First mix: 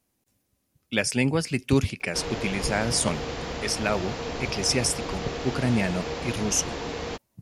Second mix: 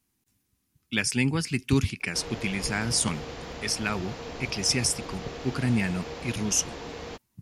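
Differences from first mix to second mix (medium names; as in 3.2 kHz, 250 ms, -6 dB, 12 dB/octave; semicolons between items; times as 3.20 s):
speech: add peaking EQ 580 Hz -14.5 dB 0.71 oct; background -6.0 dB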